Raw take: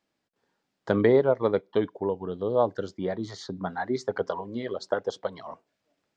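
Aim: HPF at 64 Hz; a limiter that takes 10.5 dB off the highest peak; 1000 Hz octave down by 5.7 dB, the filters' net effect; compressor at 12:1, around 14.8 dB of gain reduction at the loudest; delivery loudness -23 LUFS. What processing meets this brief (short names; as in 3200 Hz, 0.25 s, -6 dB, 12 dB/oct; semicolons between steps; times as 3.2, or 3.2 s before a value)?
HPF 64 Hz; bell 1000 Hz -8 dB; compressor 12:1, threshold -31 dBFS; gain +17.5 dB; limiter -11 dBFS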